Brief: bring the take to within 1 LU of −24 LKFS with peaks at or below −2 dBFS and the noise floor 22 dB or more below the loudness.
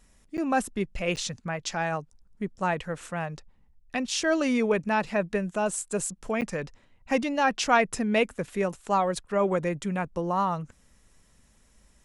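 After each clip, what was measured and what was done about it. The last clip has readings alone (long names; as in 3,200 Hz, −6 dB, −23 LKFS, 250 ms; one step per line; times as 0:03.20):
number of dropouts 3; longest dropout 8.9 ms; integrated loudness −28.0 LKFS; sample peak −8.5 dBFS; target loudness −24.0 LKFS
→ repair the gap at 0:00.37/0:01.16/0:06.41, 8.9 ms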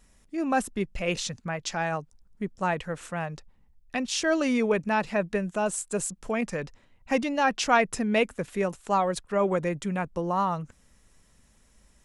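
number of dropouts 0; integrated loudness −28.0 LKFS; sample peak −8.5 dBFS; target loudness −24.0 LKFS
→ level +4 dB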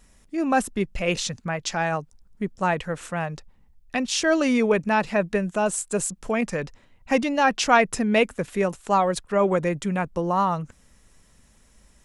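integrated loudness −24.0 LKFS; sample peak −4.5 dBFS; background noise floor −57 dBFS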